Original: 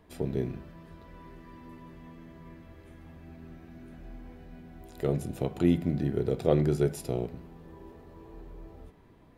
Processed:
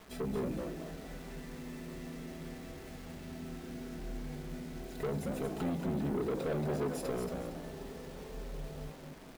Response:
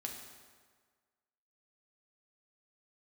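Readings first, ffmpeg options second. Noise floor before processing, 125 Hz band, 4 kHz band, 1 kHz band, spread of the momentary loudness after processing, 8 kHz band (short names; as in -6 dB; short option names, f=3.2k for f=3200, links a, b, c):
-57 dBFS, -8.0 dB, -0.5 dB, -0.5 dB, 12 LU, -0.5 dB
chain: -filter_complex "[0:a]highshelf=f=5.8k:g=-6,aecho=1:1:4.6:0.97,alimiter=limit=-18.5dB:level=0:latency=1:release=275,acrusher=bits=8:mix=0:aa=0.000001,asoftclip=type=tanh:threshold=-31dB,asplit=5[a][b][c][d][e];[b]adelay=229,afreqshift=110,volume=-6dB[f];[c]adelay=458,afreqshift=220,volume=-15.4dB[g];[d]adelay=687,afreqshift=330,volume=-24.7dB[h];[e]adelay=916,afreqshift=440,volume=-34.1dB[i];[a][f][g][h][i]amix=inputs=5:normalize=0"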